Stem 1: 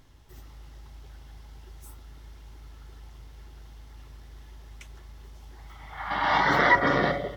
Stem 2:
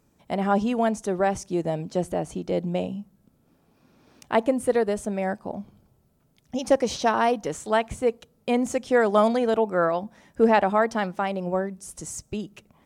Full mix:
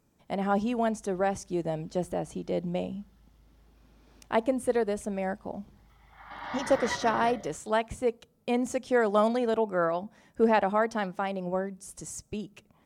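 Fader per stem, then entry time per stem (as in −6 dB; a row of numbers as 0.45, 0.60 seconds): −14.5, −4.5 decibels; 0.20, 0.00 seconds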